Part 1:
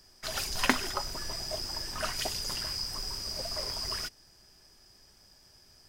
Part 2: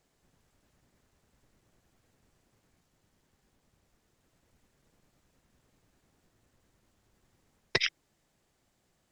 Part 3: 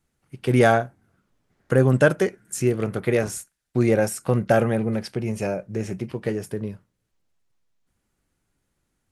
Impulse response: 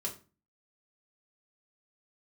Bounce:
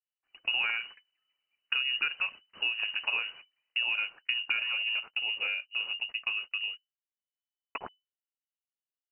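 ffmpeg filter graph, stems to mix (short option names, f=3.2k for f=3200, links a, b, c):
-filter_complex "[0:a]volume=-11dB[a];[1:a]aeval=exprs='val(0)*gte(abs(val(0)),0.0188)':c=same,volume=-8.5dB[b];[2:a]volume=-4.5dB[c];[a][c]amix=inputs=2:normalize=0,agate=range=-31dB:threshold=-37dB:ratio=16:detection=peak,acompressor=threshold=-27dB:ratio=6,volume=0dB[d];[b][d]amix=inputs=2:normalize=0,lowpass=f=2.6k:t=q:w=0.5098,lowpass=f=2.6k:t=q:w=0.6013,lowpass=f=2.6k:t=q:w=0.9,lowpass=f=2.6k:t=q:w=2.563,afreqshift=-3000"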